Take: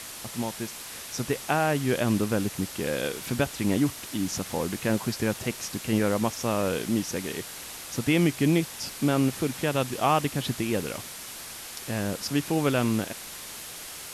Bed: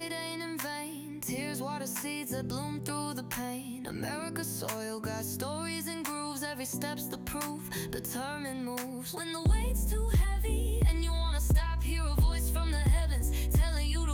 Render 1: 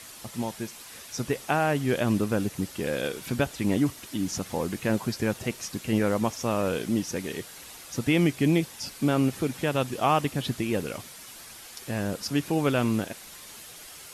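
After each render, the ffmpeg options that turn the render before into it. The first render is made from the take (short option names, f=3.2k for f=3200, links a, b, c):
-af "afftdn=nr=7:nf=-41"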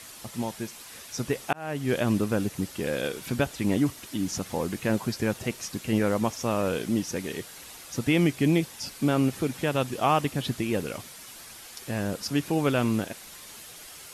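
-filter_complex "[0:a]asplit=2[a][b];[a]atrim=end=1.53,asetpts=PTS-STARTPTS,afade=t=out:st=1.526:d=0.004:c=hsin[c];[b]atrim=start=1.53,asetpts=PTS-STARTPTS,afade=t=in:d=0.4[d];[c][d]concat=n=2:v=0:a=1"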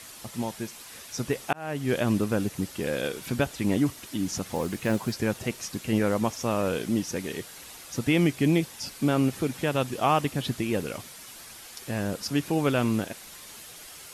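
-filter_complex "[0:a]asettb=1/sr,asplit=3[a][b][c];[a]atrim=end=4.554[d];[b]atrim=start=4.55:end=5.14,asetpts=PTS-STARTPTS,afade=t=in:d=0.004:c=qsin,afade=t=out:st=0.586:d=0.004:c=qsin,acrusher=bits=7:mode=log:mix=0:aa=0.000001[e];[c]atrim=start=5.136[f];[d][e]acrossfade=d=0.004:c1=hsin:c2=qsin[g];[g][f]acrossfade=d=0.004:c1=qsin:c2=hsin"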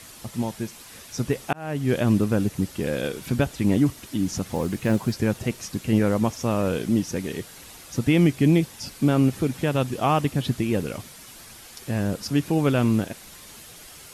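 -af "lowshelf=f=300:g=7.5"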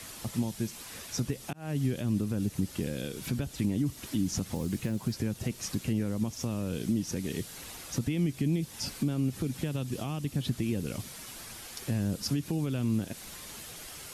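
-filter_complex "[0:a]alimiter=limit=-18dB:level=0:latency=1:release=206,acrossover=split=310|3000[a][b][c];[b]acompressor=threshold=-41dB:ratio=6[d];[a][d][c]amix=inputs=3:normalize=0"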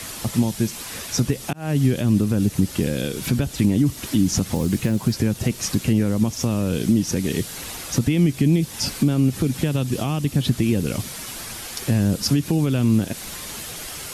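-af "volume=11dB"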